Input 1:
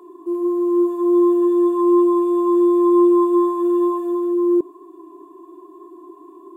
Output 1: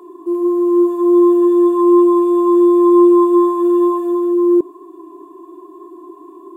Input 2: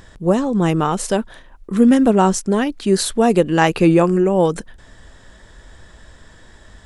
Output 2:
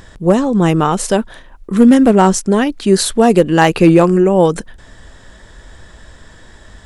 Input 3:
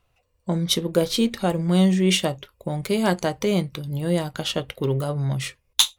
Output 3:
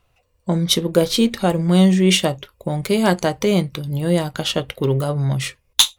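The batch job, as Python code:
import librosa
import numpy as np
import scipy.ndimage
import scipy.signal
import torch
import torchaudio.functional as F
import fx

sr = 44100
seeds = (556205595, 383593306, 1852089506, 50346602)

y = np.clip(x, -10.0 ** (-5.5 / 20.0), 10.0 ** (-5.5 / 20.0))
y = y * librosa.db_to_amplitude(4.5)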